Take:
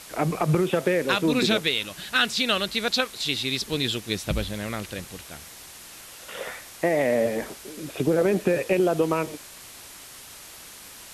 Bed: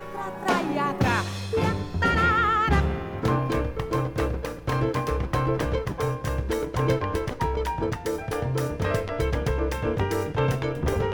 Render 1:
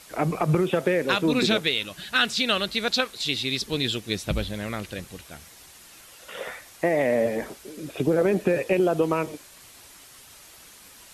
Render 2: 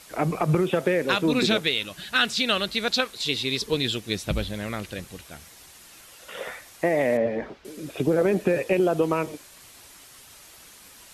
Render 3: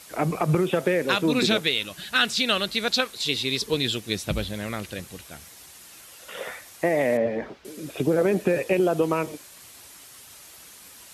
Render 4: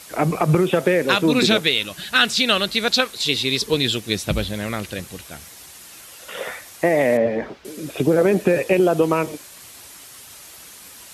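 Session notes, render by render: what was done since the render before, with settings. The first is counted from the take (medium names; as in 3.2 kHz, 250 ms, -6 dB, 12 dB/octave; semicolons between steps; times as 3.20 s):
noise reduction 6 dB, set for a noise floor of -44 dBFS
3.19–3.73 s: small resonant body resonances 450/1000 Hz, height 7 dB -> 11 dB; 7.17–7.65 s: distance through air 230 m
high-pass 54 Hz; treble shelf 6.8 kHz +4 dB
trim +5 dB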